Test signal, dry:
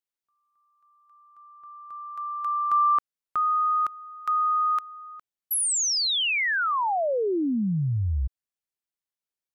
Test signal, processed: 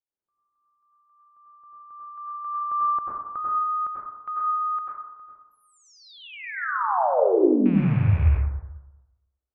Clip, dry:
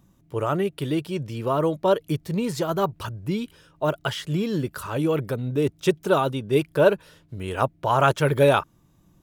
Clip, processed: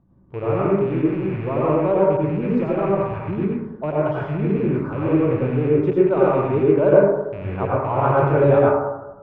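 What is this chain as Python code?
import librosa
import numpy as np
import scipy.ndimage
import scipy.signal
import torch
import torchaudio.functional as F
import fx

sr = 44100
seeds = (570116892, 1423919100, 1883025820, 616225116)

y = fx.rattle_buzz(x, sr, strikes_db=-33.0, level_db=-17.0)
y = scipy.signal.sosfilt(scipy.signal.butter(2, 1000.0, 'lowpass', fs=sr, output='sos'), y)
y = fx.rev_plate(y, sr, seeds[0], rt60_s=1.0, hf_ratio=0.25, predelay_ms=80, drr_db=-5.5)
y = y * librosa.db_to_amplitude(-2.0)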